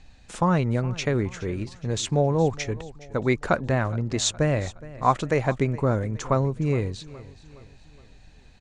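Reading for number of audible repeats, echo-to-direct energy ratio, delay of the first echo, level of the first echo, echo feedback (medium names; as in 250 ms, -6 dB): 3, -18.0 dB, 417 ms, -19.0 dB, 46%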